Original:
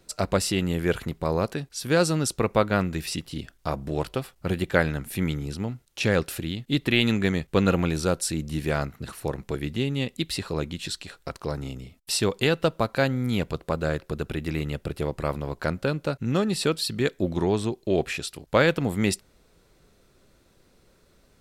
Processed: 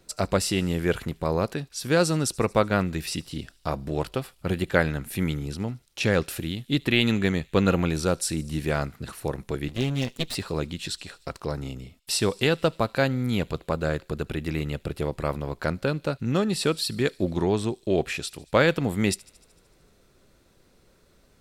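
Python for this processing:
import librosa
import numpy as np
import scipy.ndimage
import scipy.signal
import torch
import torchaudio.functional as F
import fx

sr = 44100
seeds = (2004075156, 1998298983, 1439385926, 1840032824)

p1 = fx.lower_of_two(x, sr, delay_ms=7.8, at=(9.68, 10.35))
y = p1 + fx.echo_wet_highpass(p1, sr, ms=75, feedback_pct=69, hz=3800.0, wet_db=-20.5, dry=0)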